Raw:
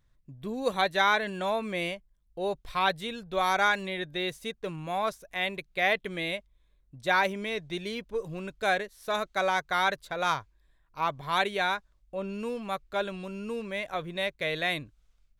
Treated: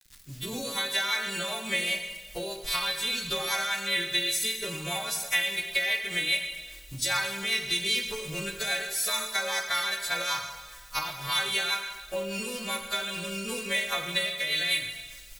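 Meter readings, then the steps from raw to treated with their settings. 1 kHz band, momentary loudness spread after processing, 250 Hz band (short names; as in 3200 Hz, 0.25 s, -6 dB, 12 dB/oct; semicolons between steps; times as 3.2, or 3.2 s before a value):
-7.0 dB, 9 LU, -4.0 dB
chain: frequency quantiser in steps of 2 st; recorder AGC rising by 22 dB/s; low shelf 87 Hz +9 dB; compressor 3:1, threshold -36 dBFS, peak gain reduction 13 dB; requantised 10-bit, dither none; rotary speaker horn 5 Hz; tilt shelf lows -8.5 dB, about 1200 Hz; on a send: echo 0.243 s -21 dB; on the sum: plate-style reverb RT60 1.3 s, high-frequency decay 0.95×, DRR 4 dB; gain +6 dB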